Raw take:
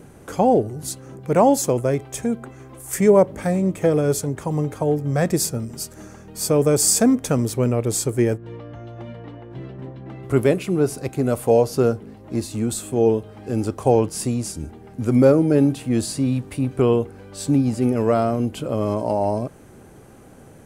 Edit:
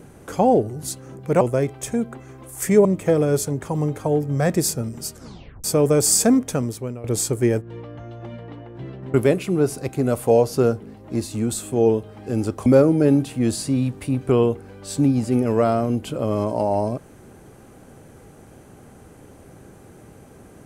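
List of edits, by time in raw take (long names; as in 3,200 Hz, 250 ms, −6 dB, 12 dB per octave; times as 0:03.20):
0:01.41–0:01.72: remove
0:03.16–0:03.61: remove
0:05.90: tape stop 0.50 s
0:07.11–0:07.80: fade out linear, to −18 dB
0:09.90–0:10.34: remove
0:13.86–0:15.16: remove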